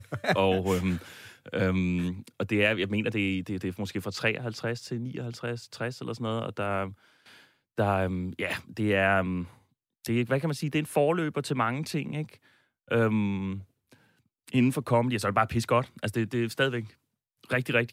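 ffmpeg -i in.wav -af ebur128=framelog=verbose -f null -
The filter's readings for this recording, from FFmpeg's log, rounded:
Integrated loudness:
  I:         -28.7 LUFS
  Threshold: -39.3 LUFS
Loudness range:
  LRA:         4.7 LU
  Threshold: -49.5 LUFS
  LRA low:   -32.7 LUFS
  LRA high:  -28.0 LUFS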